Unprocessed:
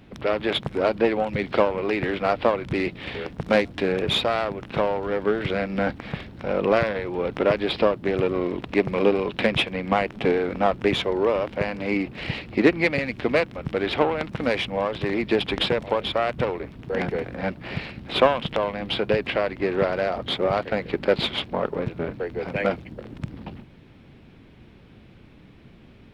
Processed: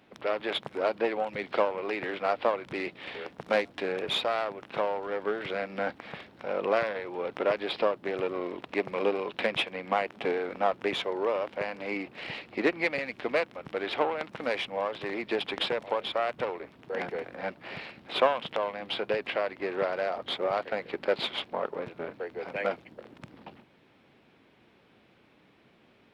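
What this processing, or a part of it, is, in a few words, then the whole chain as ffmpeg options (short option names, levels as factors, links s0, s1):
filter by subtraction: -filter_complex "[0:a]asplit=2[s0][s1];[s1]lowpass=720,volume=-1[s2];[s0][s2]amix=inputs=2:normalize=0,volume=0.473"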